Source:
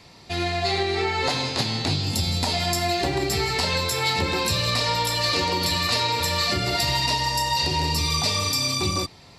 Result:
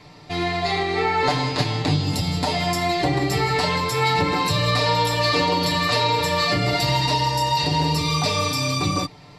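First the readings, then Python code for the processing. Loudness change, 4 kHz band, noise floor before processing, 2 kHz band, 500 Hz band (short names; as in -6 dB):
+1.5 dB, -1.0 dB, -48 dBFS, +2.0 dB, +3.5 dB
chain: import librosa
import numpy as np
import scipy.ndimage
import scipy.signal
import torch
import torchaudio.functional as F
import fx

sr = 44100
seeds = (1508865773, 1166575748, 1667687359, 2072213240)

y = fx.high_shelf(x, sr, hz=3500.0, db=-10.0)
y = y + 0.72 * np.pad(y, (int(6.7 * sr / 1000.0), 0))[:len(y)]
y = F.gain(torch.from_numpy(y), 3.0).numpy()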